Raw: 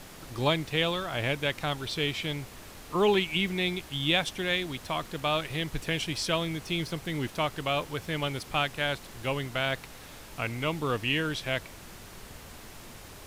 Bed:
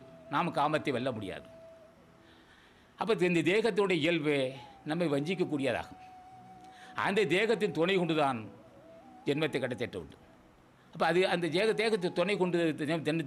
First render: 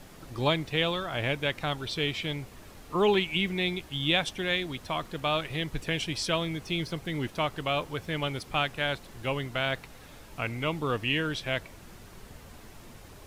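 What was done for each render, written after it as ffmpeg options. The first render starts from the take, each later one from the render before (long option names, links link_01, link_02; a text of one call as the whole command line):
ffmpeg -i in.wav -af "afftdn=noise_reduction=6:noise_floor=-47" out.wav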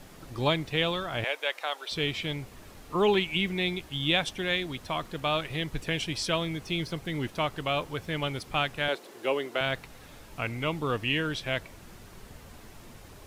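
ffmpeg -i in.wav -filter_complex "[0:a]asettb=1/sr,asplit=3[link_01][link_02][link_03];[link_01]atrim=end=1.244[link_04];[link_02]atrim=start=1.24:end=1.92,asetpts=PTS-STARTPTS,afade=type=in:duration=0.004:curve=qsin,afade=type=out:start_time=0.676:duration=0.004:curve=qsin,highpass=frequency=490:width=0.5412,highpass=frequency=490:width=1.3066[link_05];[link_03]atrim=start=1.916[link_06];[link_04][link_05]acrossfade=duration=0.004:curve1=hsin:curve2=qsin[link_07];[link_07][link_06]acrossfade=duration=0.004:curve1=qsin:curve2=hsin,asettb=1/sr,asplit=3[link_08][link_09][link_10];[link_08]atrim=end=8.884[link_11];[link_09]atrim=start=8.88:end=9.61,asetpts=PTS-STARTPTS,afade=type=in:duration=0.004:curve=qsin,afade=type=out:start_time=0.726:duration=0.004:curve=qsin,highpass=frequency=380:width_type=q:width=2.2[link_12];[link_10]atrim=start=9.606[link_13];[link_11][link_12]acrossfade=duration=0.004:curve1=hsin:curve2=qsin[link_14];[link_14][link_13]acrossfade=duration=0.004:curve1=qsin:curve2=hsin" out.wav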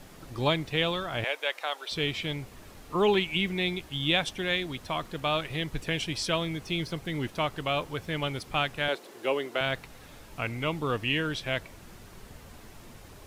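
ffmpeg -i in.wav -af anull out.wav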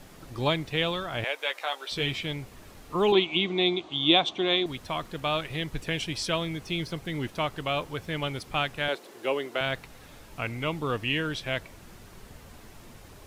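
ffmpeg -i in.wav -filter_complex "[0:a]asettb=1/sr,asplit=3[link_01][link_02][link_03];[link_01]atrim=end=1.374[link_04];[link_02]atrim=start=1.37:end=2.19,asetpts=PTS-STARTPTS,afade=type=in:duration=0.004:curve=qsin,afade=type=out:start_time=0.816:duration=0.004:curve=qsin,asplit=2[link_05][link_06];[link_06]adelay=15,volume=-6dB[link_07];[link_05][link_07]amix=inputs=2:normalize=0,atrim=end_sample=36162[link_08];[link_03]atrim=start=2.186[link_09];[link_04][link_08]acrossfade=duration=0.004:curve1=hsin:curve2=qsin[link_10];[link_10][link_09]acrossfade=duration=0.004:curve1=qsin:curve2=hsin,asettb=1/sr,asplit=3[link_11][link_12][link_13];[link_11]atrim=end=3.124[link_14];[link_12]atrim=start=3.12:end=4.66,asetpts=PTS-STARTPTS,afade=type=in:duration=0.004:curve=qsin,afade=type=out:start_time=1.536:duration=0.004:curve=qsin,highpass=170,equalizer=frequency=340:width_type=q:width=4:gain=10,equalizer=frequency=710:width_type=q:width=4:gain=9,equalizer=frequency=1100:width_type=q:width=4:gain=8,equalizer=frequency=1700:width_type=q:width=4:gain=-8,equalizer=frequency=3600:width_type=q:width=4:gain=8,equalizer=frequency=5200:width_type=q:width=4:gain=-7,lowpass=frequency=6300:width=0.5412,lowpass=frequency=6300:width=1.3066[link_15];[link_13]atrim=start=4.656[link_16];[link_14][link_15]acrossfade=duration=0.004:curve1=hsin:curve2=qsin[link_17];[link_17][link_16]acrossfade=duration=0.004:curve1=qsin:curve2=hsin" out.wav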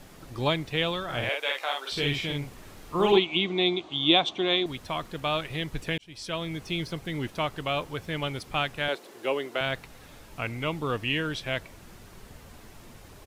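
ffmpeg -i in.wav -filter_complex "[0:a]asplit=3[link_01][link_02][link_03];[link_01]afade=type=out:start_time=1.08:duration=0.02[link_04];[link_02]asplit=2[link_05][link_06];[link_06]adelay=49,volume=-3dB[link_07];[link_05][link_07]amix=inputs=2:normalize=0,afade=type=in:start_time=1.08:duration=0.02,afade=type=out:start_time=3.17:duration=0.02[link_08];[link_03]afade=type=in:start_time=3.17:duration=0.02[link_09];[link_04][link_08][link_09]amix=inputs=3:normalize=0,asplit=2[link_10][link_11];[link_10]atrim=end=5.98,asetpts=PTS-STARTPTS,afade=type=out:start_time=5.976:duration=0.004:curve=hsin[link_12];[link_11]atrim=start=5.98,asetpts=PTS-STARTPTS,afade=type=in:duration=0.59[link_13];[link_12][link_13]concat=n=2:v=0:a=1" out.wav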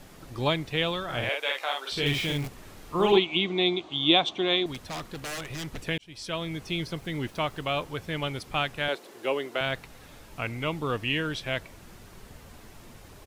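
ffmpeg -i in.wav -filter_complex "[0:a]asettb=1/sr,asplit=3[link_01][link_02][link_03];[link_01]atrim=end=2.064[link_04];[link_02]atrim=start=2.06:end=2.48,asetpts=PTS-STARTPTS,afade=type=in:duration=0.004:curve=qsin,afade=type=out:start_time=0.416:duration=0.004:curve=qsin,aeval=exprs='val(0)+0.5*0.02*sgn(val(0))':channel_layout=same[link_05];[link_03]atrim=start=2.476[link_06];[link_04][link_05]acrossfade=duration=0.004:curve1=hsin:curve2=qsin[link_07];[link_07][link_06]acrossfade=duration=0.004:curve1=qsin:curve2=hsin,asettb=1/sr,asplit=3[link_08][link_09][link_10];[link_08]atrim=end=4.744[link_11];[link_09]atrim=start=4.74:end=5.8,asetpts=PTS-STARTPTS,afade=type=in:duration=0.004:curve=qsin,afade=type=out:start_time=1.056:duration=0.004:curve=qsin,aeval=exprs='0.0335*(abs(mod(val(0)/0.0335+3,4)-2)-1)':channel_layout=same[link_12];[link_10]atrim=start=5.796[link_13];[link_11][link_12]acrossfade=duration=0.004:curve1=hsin:curve2=qsin[link_14];[link_14][link_13]acrossfade=duration=0.004:curve1=qsin:curve2=hsin,asettb=1/sr,asplit=3[link_15][link_16][link_17];[link_15]atrim=end=6.924[link_18];[link_16]atrim=start=6.92:end=7.65,asetpts=PTS-STARTPTS,afade=type=in:duration=0.004:curve=qsin,afade=type=out:start_time=0.726:duration=0.004:curve=qsin,aeval=exprs='val(0)*gte(abs(val(0)),0.00211)':channel_layout=same[link_19];[link_17]atrim=start=7.646[link_20];[link_18][link_19]acrossfade=duration=0.004:curve1=hsin:curve2=qsin[link_21];[link_21][link_20]acrossfade=duration=0.004:curve1=qsin:curve2=hsin" out.wav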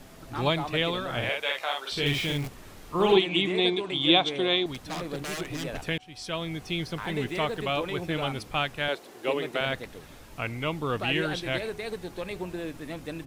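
ffmpeg -i in.wav -i bed.wav -filter_complex "[1:a]volume=-6dB[link_01];[0:a][link_01]amix=inputs=2:normalize=0" out.wav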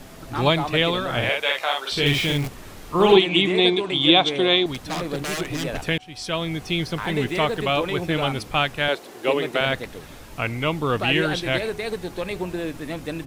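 ffmpeg -i in.wav -af "volume=6.5dB,alimiter=limit=-3dB:level=0:latency=1" out.wav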